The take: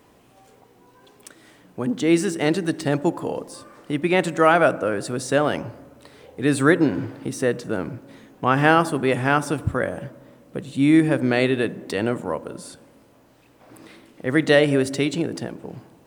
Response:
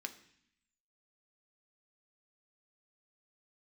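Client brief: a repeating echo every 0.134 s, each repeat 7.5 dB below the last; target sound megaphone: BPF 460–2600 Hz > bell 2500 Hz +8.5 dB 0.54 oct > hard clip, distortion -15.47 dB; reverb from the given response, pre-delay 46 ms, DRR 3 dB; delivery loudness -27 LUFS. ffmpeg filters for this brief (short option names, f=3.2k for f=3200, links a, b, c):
-filter_complex "[0:a]aecho=1:1:134|268|402|536|670:0.422|0.177|0.0744|0.0312|0.0131,asplit=2[a][b];[1:a]atrim=start_sample=2205,adelay=46[c];[b][c]afir=irnorm=-1:irlink=0,volume=-1.5dB[d];[a][d]amix=inputs=2:normalize=0,highpass=460,lowpass=2.6k,equalizer=f=2.5k:t=o:w=0.54:g=8.5,asoftclip=type=hard:threshold=-10.5dB,volume=-5dB"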